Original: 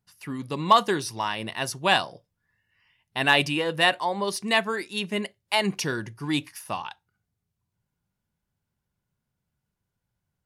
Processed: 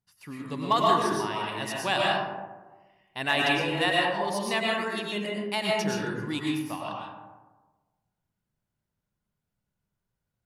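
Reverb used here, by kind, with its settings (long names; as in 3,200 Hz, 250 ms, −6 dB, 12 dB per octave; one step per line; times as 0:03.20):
comb and all-pass reverb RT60 1.3 s, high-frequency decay 0.35×, pre-delay 75 ms, DRR −3.5 dB
level −7 dB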